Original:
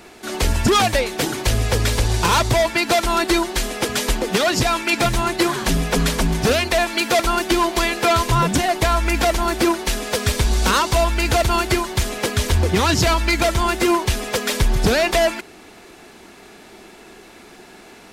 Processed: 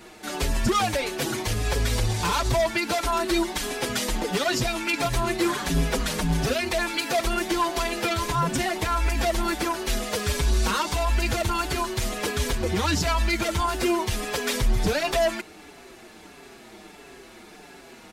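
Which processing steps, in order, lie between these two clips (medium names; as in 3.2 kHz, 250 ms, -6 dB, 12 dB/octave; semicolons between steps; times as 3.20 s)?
peak limiter -12.5 dBFS, peak gain reduction 6.5 dB; endless flanger 5.8 ms -1.5 Hz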